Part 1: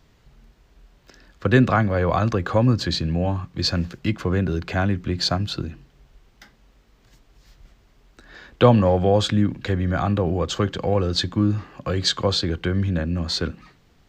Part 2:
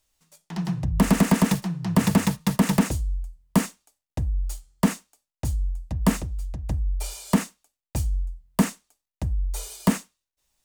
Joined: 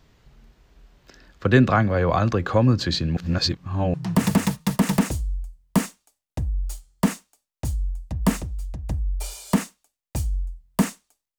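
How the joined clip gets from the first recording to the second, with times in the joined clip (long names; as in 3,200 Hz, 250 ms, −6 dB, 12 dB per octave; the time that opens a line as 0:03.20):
part 1
0:03.17–0:03.94: reverse
0:03.94: continue with part 2 from 0:01.74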